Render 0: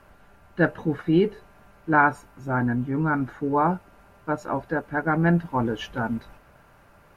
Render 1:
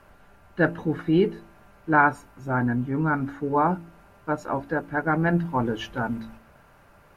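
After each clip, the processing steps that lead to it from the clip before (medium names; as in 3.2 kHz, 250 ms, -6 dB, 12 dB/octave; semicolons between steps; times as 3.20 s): de-hum 55.98 Hz, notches 6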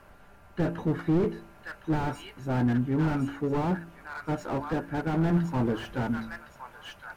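feedback echo behind a high-pass 1062 ms, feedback 36%, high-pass 1.8 kHz, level -5.5 dB; slew-rate limiter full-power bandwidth 26 Hz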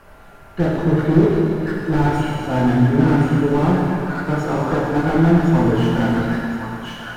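plate-style reverb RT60 3 s, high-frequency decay 0.9×, DRR -4 dB; trim +6 dB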